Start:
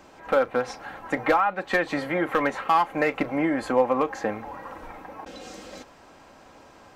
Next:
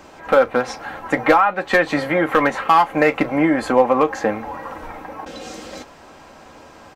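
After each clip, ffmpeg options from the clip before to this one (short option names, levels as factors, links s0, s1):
-filter_complex "[0:a]asplit=2[s0][s1];[s1]adelay=13,volume=0.266[s2];[s0][s2]amix=inputs=2:normalize=0,volume=2.24"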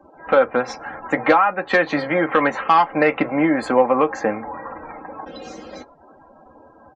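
-filter_complex "[0:a]afftdn=nr=35:nf=-39,acrossover=split=110|1800[s0][s1][s2];[s0]acompressor=threshold=0.00251:ratio=6[s3];[s3][s1][s2]amix=inputs=3:normalize=0,volume=0.891"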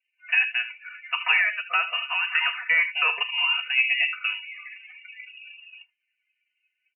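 -af "aecho=1:1:42|77:0.188|0.266,lowpass=f=2600:t=q:w=0.5098,lowpass=f=2600:t=q:w=0.6013,lowpass=f=2600:t=q:w=0.9,lowpass=f=2600:t=q:w=2.563,afreqshift=-3100,afftdn=nr=24:nf=-29,volume=0.447"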